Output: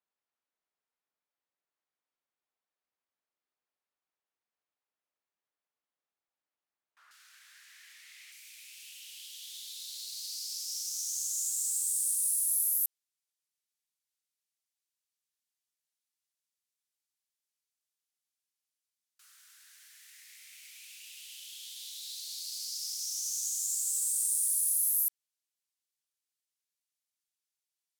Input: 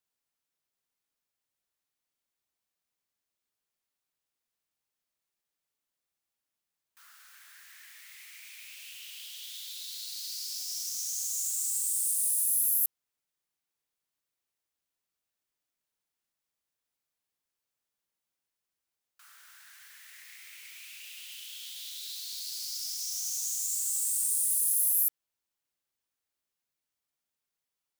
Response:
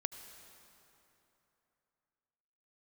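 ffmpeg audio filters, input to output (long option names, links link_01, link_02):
-af "asetnsamples=nb_out_samples=441:pad=0,asendcmd='7.11 bandpass f 3900;8.32 bandpass f 7300',bandpass=frequency=810:width_type=q:width=0.54:csg=0"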